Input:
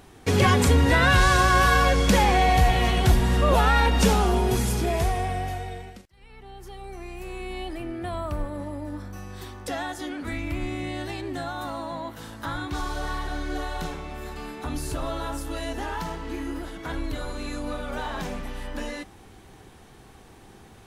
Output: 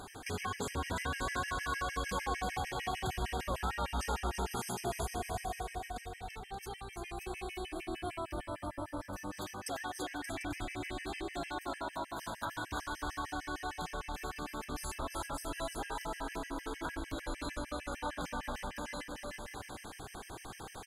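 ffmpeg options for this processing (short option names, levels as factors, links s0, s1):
-filter_complex "[0:a]equalizer=f=8900:t=o:w=2.1:g=8.5,alimiter=limit=0.237:level=0:latency=1,equalizer=f=1100:t=o:w=2.1:g=7,acompressor=threshold=0.01:ratio=3,asplit=2[s0][s1];[s1]aecho=0:1:340|578|744.6|861.2|942.9:0.631|0.398|0.251|0.158|0.1[s2];[s0][s2]amix=inputs=2:normalize=0,afftfilt=real='re*gt(sin(2*PI*6.6*pts/sr)*(1-2*mod(floor(b*sr/1024/1600),2)),0)':imag='im*gt(sin(2*PI*6.6*pts/sr)*(1-2*mod(floor(b*sr/1024/1600),2)),0)':win_size=1024:overlap=0.75"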